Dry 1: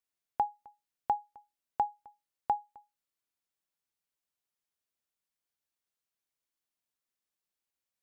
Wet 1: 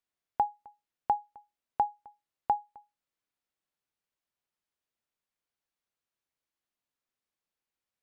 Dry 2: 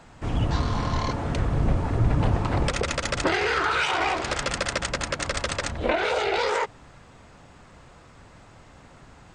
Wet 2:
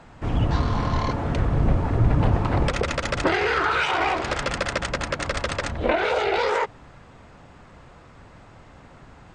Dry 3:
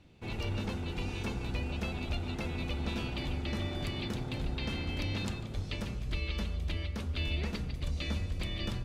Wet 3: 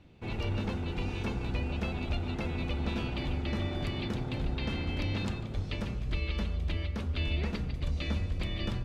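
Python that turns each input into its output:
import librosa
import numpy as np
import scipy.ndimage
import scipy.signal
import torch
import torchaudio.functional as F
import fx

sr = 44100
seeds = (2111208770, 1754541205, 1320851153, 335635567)

y = fx.high_shelf(x, sr, hz=5100.0, db=-10.5)
y = y * 10.0 ** (2.5 / 20.0)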